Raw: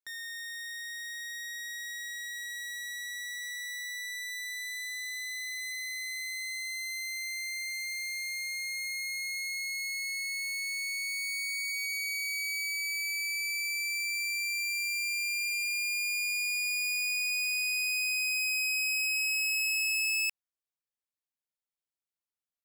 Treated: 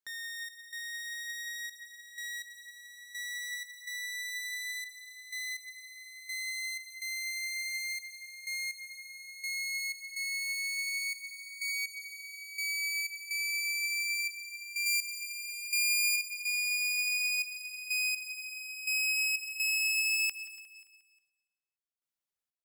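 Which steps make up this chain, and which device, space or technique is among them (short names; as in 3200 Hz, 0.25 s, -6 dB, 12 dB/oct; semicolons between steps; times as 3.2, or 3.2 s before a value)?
14.86–16.16 high shelf 4200 Hz +8.5 dB; trance gate with a delay (step gate "xx.xxxx..x..." 62 bpm -12 dB; feedback echo 0.178 s, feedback 53%, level -17 dB); feedback echo 0.287 s, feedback 25%, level -19 dB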